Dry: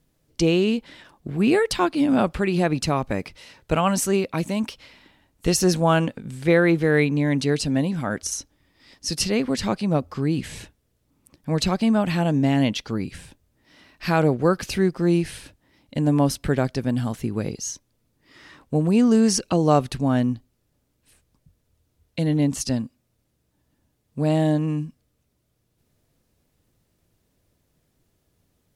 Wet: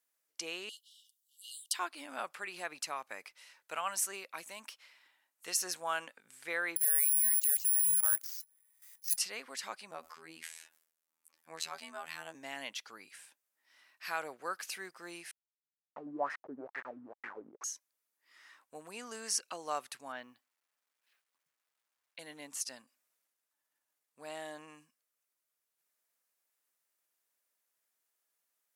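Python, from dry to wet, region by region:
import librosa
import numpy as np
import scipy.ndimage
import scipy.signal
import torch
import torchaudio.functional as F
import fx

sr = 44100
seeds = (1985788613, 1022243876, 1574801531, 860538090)

y = fx.chain(x, sr, fx.brickwall_highpass(low_hz=2800.0),
    fx.high_shelf(hz=7100.0, db=7.0), at=(0.69, 1.74))
y = fx.chain(y, sr, fx.lowpass(hz=5700.0, slope=12),
    fx.level_steps(step_db=14),
    fx.resample_bad(factor=4, down='none', up='zero_stuff'), at=(6.76, 9.18))
y = fx.chain(y, sr, fx.robotise(hz=81.1),
    fx.sustainer(db_per_s=96.0), at=(9.91, 12.35))
y = fx.chain(y, sr, fx.delta_hold(step_db=-26.0),
    fx.filter_lfo_lowpass(shape='sine', hz=2.2, low_hz=240.0, high_hz=1900.0, q=5.9), at=(15.31, 17.64))
y = fx.chain(y, sr, fx.lowpass(hz=4400.0, slope=24),
    fx.peak_eq(hz=61.0, db=-6.0, octaves=0.84),
    fx.quant_dither(seeds[0], bits=12, dither='none'), at=(20.12, 22.19))
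y = fx.chain(y, sr, fx.high_shelf(hz=8900.0, db=-3.0),
    fx.transient(attack_db=-1, sustain_db=6), at=(22.84, 24.75))
y = scipy.signal.sosfilt(scipy.signal.butter(2, 1500.0, 'highpass', fs=sr, output='sos'), y)
y = fx.peak_eq(y, sr, hz=3600.0, db=-9.0, octaves=1.8)
y = y * librosa.db_to_amplitude(-4.0)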